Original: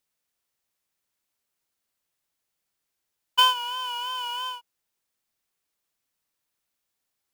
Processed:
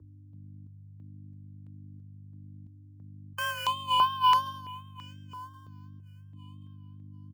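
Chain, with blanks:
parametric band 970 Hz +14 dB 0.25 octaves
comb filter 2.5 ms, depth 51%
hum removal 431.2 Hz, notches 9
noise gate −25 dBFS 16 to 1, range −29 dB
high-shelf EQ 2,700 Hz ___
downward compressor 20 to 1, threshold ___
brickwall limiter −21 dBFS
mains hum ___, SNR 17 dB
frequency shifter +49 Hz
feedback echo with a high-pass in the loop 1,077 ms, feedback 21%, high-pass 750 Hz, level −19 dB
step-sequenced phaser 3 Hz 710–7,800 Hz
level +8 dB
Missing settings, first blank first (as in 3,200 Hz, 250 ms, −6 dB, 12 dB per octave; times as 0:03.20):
−4 dB, −21 dBFS, 50 Hz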